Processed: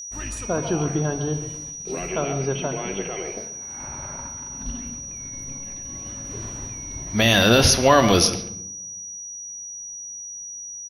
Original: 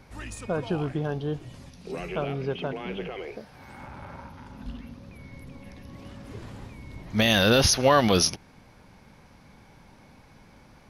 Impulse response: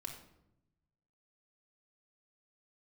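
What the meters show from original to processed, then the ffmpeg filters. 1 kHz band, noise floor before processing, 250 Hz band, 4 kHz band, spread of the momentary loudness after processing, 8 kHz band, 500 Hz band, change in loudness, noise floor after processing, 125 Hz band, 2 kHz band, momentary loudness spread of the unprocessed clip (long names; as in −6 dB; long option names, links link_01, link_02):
+4.5 dB, −54 dBFS, +4.0 dB, +4.5 dB, 17 LU, +9.5 dB, +4.0 dB, +1.0 dB, −36 dBFS, +4.5 dB, +4.5 dB, 24 LU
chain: -filter_complex "[0:a]asplit=2[link_01][link_02];[link_02]adelay=140,highpass=300,lowpass=3400,asoftclip=type=hard:threshold=-17.5dB,volume=-11dB[link_03];[link_01][link_03]amix=inputs=2:normalize=0,agate=range=-33dB:threshold=-40dB:ratio=3:detection=peak,asplit=2[link_04][link_05];[1:a]atrim=start_sample=2205[link_06];[link_05][link_06]afir=irnorm=-1:irlink=0,volume=0.5dB[link_07];[link_04][link_07]amix=inputs=2:normalize=0,aeval=exprs='val(0)+0.0224*sin(2*PI*5800*n/s)':channel_layout=same"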